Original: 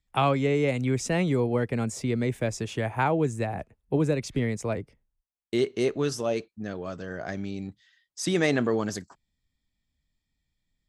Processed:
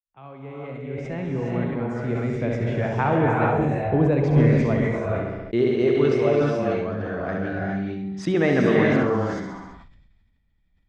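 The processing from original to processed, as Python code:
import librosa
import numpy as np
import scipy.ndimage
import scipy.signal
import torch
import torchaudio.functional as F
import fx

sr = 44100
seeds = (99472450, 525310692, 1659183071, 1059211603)

p1 = fx.fade_in_head(x, sr, length_s=3.59)
p2 = scipy.signal.sosfilt(scipy.signal.butter(2, 2100.0, 'lowpass', fs=sr, output='sos'), p1)
p3 = fx.low_shelf(p2, sr, hz=83.0, db=6.0)
p4 = p3 + fx.echo_feedback(p3, sr, ms=67, feedback_pct=45, wet_db=-7.0, dry=0)
p5 = fx.rev_gated(p4, sr, seeds[0], gate_ms=460, shape='rising', drr_db=-2.0)
p6 = fx.sustainer(p5, sr, db_per_s=38.0)
y = p6 * 10.0 ** (2.5 / 20.0)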